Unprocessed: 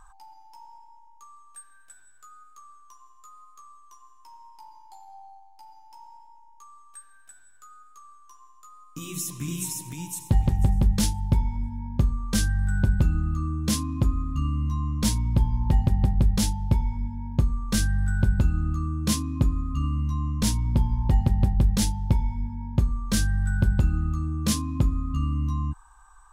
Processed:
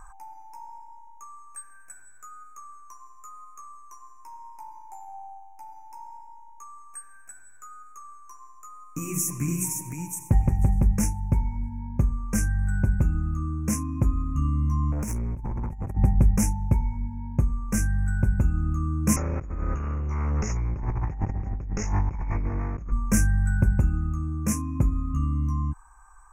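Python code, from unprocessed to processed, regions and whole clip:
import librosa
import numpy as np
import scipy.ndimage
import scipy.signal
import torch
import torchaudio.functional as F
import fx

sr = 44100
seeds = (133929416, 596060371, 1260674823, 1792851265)

y = fx.chain(x, sr, fx.over_compress(threshold_db=-26.0, ratio=-0.5),
    fx.clip_hard(threshold_db=-29.0), at=(14.92, 15.97))
y = fx.chain(y, sr, fx.lower_of_two(delay_ms=1.5),
    fx.over_compress(threshold_db=-30.0, ratio=-1.0),
    fx.cheby_ripple(hz=6900.0, ripple_db=6), at=(19.16, 22.92))
y = scipy.signal.sosfilt(scipy.signal.cheby1(3, 1.0, [2400.0, 5900.0], 'bandstop', fs=sr, output='sos'), y)
y = fx.rider(y, sr, range_db=10, speed_s=2.0)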